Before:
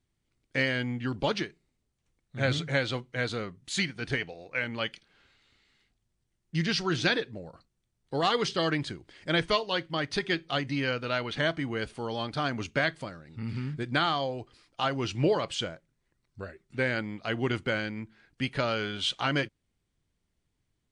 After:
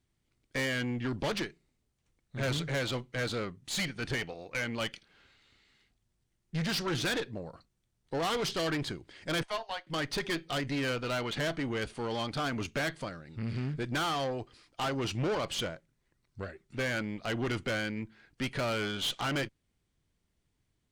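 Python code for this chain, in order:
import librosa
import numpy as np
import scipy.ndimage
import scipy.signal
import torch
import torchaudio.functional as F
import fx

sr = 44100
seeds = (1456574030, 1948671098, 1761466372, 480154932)

y = fx.ladder_highpass(x, sr, hz=670.0, resonance_pct=65, at=(9.43, 9.87))
y = fx.tube_stage(y, sr, drive_db=31.0, bias=0.5)
y = F.gain(torch.from_numpy(y), 3.0).numpy()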